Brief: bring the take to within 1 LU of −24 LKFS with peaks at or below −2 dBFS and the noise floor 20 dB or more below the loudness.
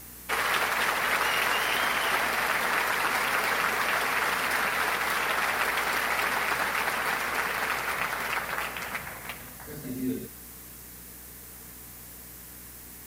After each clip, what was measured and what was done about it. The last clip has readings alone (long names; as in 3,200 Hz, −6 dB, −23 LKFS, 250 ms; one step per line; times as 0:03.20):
mains hum 60 Hz; hum harmonics up to 300 Hz; level of the hum −51 dBFS; background noise floor −45 dBFS; target noise floor −47 dBFS; integrated loudness −26.5 LKFS; sample peak −11.5 dBFS; target loudness −24.0 LKFS
→ hum removal 60 Hz, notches 5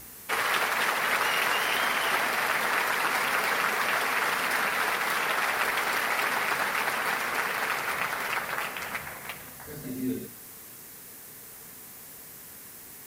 mains hum none found; background noise floor −46 dBFS; target noise floor −47 dBFS
→ noise reduction from a noise print 6 dB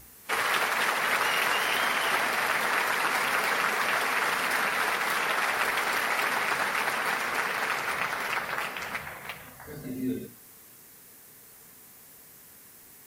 background noise floor −52 dBFS; integrated loudness −26.5 LKFS; sample peak −11.5 dBFS; target loudness −24.0 LKFS
→ level +2.5 dB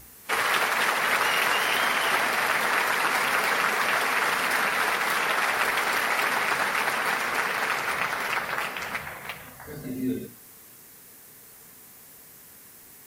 integrated loudness −24.0 LKFS; sample peak −9.0 dBFS; background noise floor −49 dBFS